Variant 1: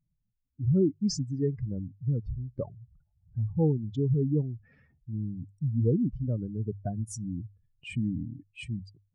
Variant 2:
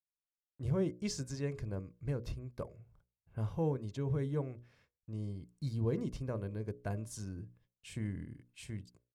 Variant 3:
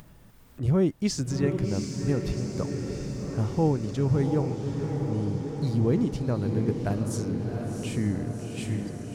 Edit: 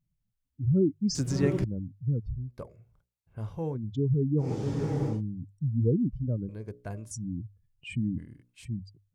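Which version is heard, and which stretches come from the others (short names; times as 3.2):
1
1.15–1.64 from 3
2.51–3.76 from 2, crossfade 0.06 s
4.45–5.14 from 3, crossfade 0.16 s
6.49–7.11 from 2
8.18–8.65 from 2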